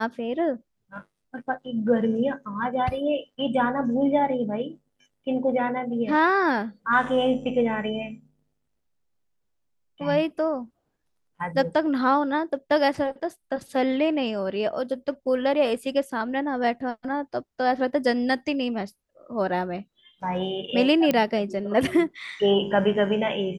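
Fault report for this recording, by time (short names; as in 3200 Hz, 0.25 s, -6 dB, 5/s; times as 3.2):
21.11 pop -10 dBFS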